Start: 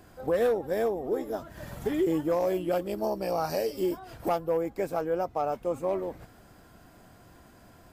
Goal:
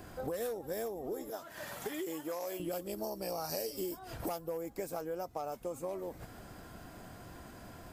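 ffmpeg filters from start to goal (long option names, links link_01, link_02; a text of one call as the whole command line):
ffmpeg -i in.wav -filter_complex "[0:a]asettb=1/sr,asplit=3[link_01][link_02][link_03];[link_01]atrim=end=1.304[link_04];[link_02]atrim=start=1.3:end=2.6,asetpts=PTS-STARTPTS,afade=type=in:duration=0.004:curve=qsin,afade=type=out:start_time=1.296:duration=0.004:curve=qsin,highpass=frequency=920:poles=1[link_05];[link_03]atrim=start=2.596[link_06];[link_04][link_05]acrossfade=duration=0.004:curve1=hsin:curve2=qsin[link_07];[link_07][link_06]acrossfade=duration=0.004:curve1=qsin:curve2=hsin,acrossover=split=5200[link_08][link_09];[link_08]acompressor=threshold=-41dB:ratio=6[link_10];[link_10][link_09]amix=inputs=2:normalize=0,volume=4dB" out.wav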